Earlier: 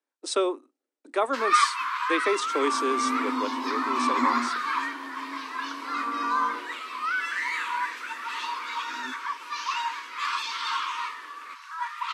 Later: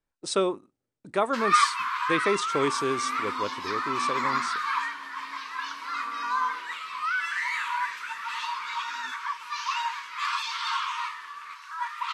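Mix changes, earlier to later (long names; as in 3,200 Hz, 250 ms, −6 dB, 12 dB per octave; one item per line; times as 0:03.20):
second sound: add resonant band-pass 3,200 Hz, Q 0.54
master: remove Butterworth high-pass 250 Hz 72 dB per octave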